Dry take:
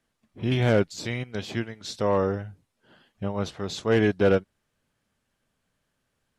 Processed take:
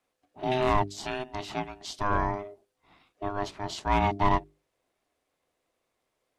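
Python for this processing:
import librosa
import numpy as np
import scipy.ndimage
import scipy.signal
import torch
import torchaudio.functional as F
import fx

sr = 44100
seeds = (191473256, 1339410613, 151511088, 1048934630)

y = x * np.sin(2.0 * np.pi * 510.0 * np.arange(len(x)) / sr)
y = fx.hum_notches(y, sr, base_hz=50, count=8)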